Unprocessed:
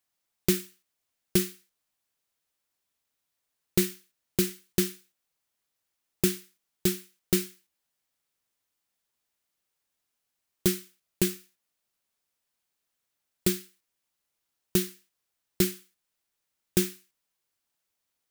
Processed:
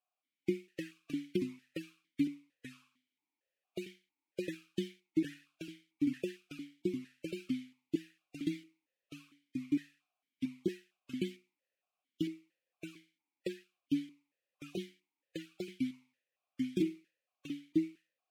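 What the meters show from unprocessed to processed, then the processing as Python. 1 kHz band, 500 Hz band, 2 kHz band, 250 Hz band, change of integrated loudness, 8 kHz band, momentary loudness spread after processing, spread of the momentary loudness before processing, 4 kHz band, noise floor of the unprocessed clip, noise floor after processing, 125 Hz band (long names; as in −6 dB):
below −15 dB, −8.0 dB, −9.0 dB, −3.0 dB, −10.5 dB, −25.5 dB, 17 LU, 9 LU, −13.5 dB, −82 dBFS, below −85 dBFS, −11.0 dB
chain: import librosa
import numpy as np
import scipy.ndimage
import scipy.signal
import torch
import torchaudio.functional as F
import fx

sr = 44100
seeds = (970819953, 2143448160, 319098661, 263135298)

y = fx.echo_pitch(x, sr, ms=244, semitones=-2, count=3, db_per_echo=-3.0)
y = fx.spec_gate(y, sr, threshold_db=-25, keep='strong')
y = fx.vowel_held(y, sr, hz=4.4)
y = y * librosa.db_to_amplitude(5.0)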